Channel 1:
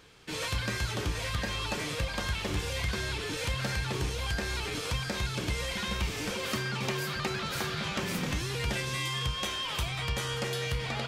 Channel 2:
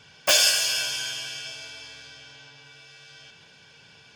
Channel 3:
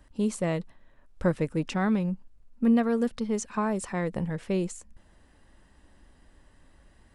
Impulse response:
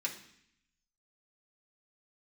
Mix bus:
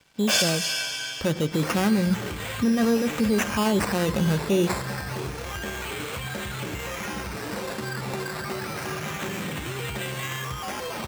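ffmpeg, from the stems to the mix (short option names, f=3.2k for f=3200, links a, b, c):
-filter_complex "[0:a]alimiter=level_in=1.5dB:limit=-24dB:level=0:latency=1:release=19,volume=-1.5dB,adelay=1250,volume=-2dB,asplit=2[a][b];[b]volume=-10dB[c];[1:a]highshelf=f=2.1k:g=-5,volume=-4dB,asplit=2[d][e];[e]volume=-12dB[f];[2:a]dynaudnorm=f=220:g=13:m=11.5dB,volume=-3dB,asplit=3[g][h][i];[h]volume=-16dB[j];[i]apad=whole_len=183330[k];[d][k]sidechaincompress=threshold=-35dB:ratio=8:attack=16:release=112[l];[a][g]amix=inputs=2:normalize=0,acrusher=samples=11:mix=1:aa=0.000001:lfo=1:lforange=6.6:lforate=0.28,alimiter=limit=-21dB:level=0:latency=1:release=16,volume=0dB[m];[3:a]atrim=start_sample=2205[n];[c][f][j]amix=inputs=3:normalize=0[o];[o][n]afir=irnorm=-1:irlink=0[p];[l][m][p]amix=inputs=3:normalize=0,highpass=78,acontrast=31,aeval=exprs='sgn(val(0))*max(abs(val(0))-0.00299,0)':c=same"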